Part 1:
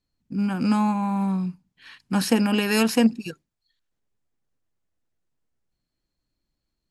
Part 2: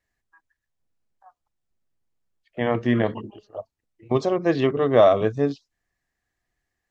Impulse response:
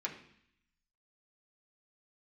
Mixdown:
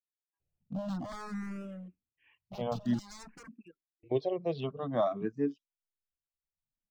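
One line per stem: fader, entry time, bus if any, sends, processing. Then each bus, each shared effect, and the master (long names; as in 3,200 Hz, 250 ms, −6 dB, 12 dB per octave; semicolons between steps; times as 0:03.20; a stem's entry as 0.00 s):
0:03.18 −1 dB → 0:03.92 −11 dB, 0.40 s, no send, Butterworth low-pass 2,800 Hz 72 dB per octave; wave folding −24.5 dBFS; automatic ducking −9 dB, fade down 2.00 s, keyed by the second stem
−4.5 dB, 0.00 s, muted 0:02.99–0:03.89, no send, Chebyshev band-pass filter 160–3,300 Hz, order 2; noise gate with hold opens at −41 dBFS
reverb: not used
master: reverb reduction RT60 0.95 s; parametric band 1,600 Hz −7.5 dB 2 octaves; frequency shifter mixed with the dry sound +0.51 Hz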